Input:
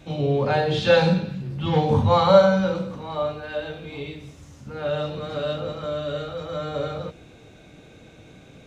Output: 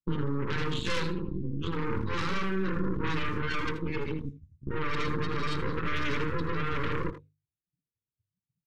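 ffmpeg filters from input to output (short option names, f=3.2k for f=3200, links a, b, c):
-filter_complex "[0:a]afftdn=nr=32:nf=-29,agate=range=-33dB:threshold=-39dB:ratio=3:detection=peak,lowshelf=f=260:g=10.5,bandreject=f=50:t=h:w=6,bandreject=f=100:t=h:w=6,bandreject=f=150:t=h:w=6,areverse,acompressor=threshold=-22dB:ratio=20,areverse,alimiter=level_in=2dB:limit=-24dB:level=0:latency=1:release=116,volume=-2dB,acrossover=split=420|3000[a][b][c];[a]acompressor=threshold=-39dB:ratio=3[d];[d][b][c]amix=inputs=3:normalize=0,aphaser=in_gain=1:out_gain=1:delay=3:decay=0.21:speed=0.33:type=triangular,aeval=exprs='0.0596*(cos(1*acos(clip(val(0)/0.0596,-1,1)))-cos(1*PI/2))+0.0211*(cos(6*acos(clip(val(0)/0.0596,-1,1)))-cos(6*PI/2))':c=same,asuperstop=centerf=680:order=4:qfactor=1.2,asplit=2[e][f];[f]adelay=80,highpass=300,lowpass=3.4k,asoftclip=type=hard:threshold=-36dB,volume=-9dB[g];[e][g]amix=inputs=2:normalize=0,volume=4dB"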